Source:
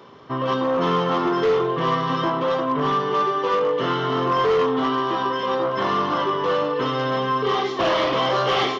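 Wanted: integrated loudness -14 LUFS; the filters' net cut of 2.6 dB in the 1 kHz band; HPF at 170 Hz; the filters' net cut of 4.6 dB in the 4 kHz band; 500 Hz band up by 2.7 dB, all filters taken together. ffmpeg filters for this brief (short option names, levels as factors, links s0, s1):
-af "highpass=170,equalizer=f=500:t=o:g=4,equalizer=f=1000:t=o:g=-3.5,equalizer=f=4000:t=o:g=-6.5,volume=2.24"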